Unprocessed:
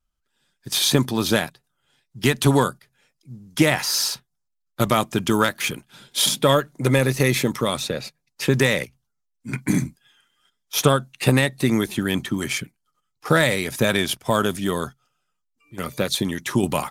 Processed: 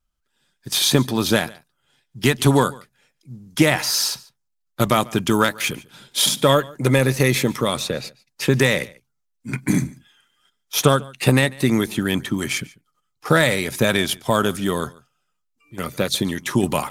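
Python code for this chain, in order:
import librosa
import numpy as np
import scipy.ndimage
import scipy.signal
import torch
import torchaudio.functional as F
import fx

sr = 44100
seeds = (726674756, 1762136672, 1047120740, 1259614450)

y = x + 10.0 ** (-23.0 / 20.0) * np.pad(x, (int(144 * sr / 1000.0), 0))[:len(x)]
y = y * librosa.db_to_amplitude(1.5)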